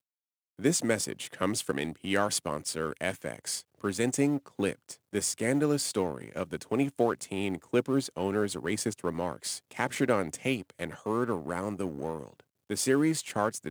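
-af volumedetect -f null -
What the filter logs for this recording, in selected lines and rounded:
mean_volume: -31.1 dB
max_volume: -11.2 dB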